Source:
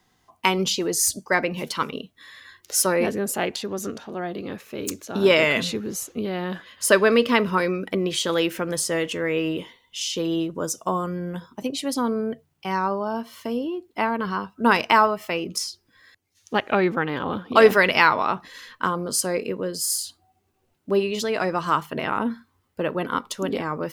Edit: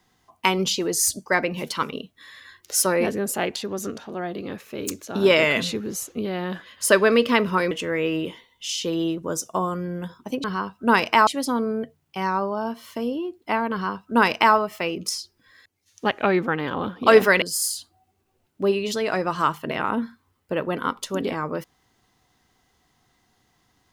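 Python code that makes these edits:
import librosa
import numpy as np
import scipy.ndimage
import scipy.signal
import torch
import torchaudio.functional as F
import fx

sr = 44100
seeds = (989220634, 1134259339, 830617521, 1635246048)

y = fx.edit(x, sr, fx.cut(start_s=7.71, length_s=1.32),
    fx.duplicate(start_s=14.21, length_s=0.83, to_s=11.76),
    fx.cut(start_s=17.91, length_s=1.79), tone=tone)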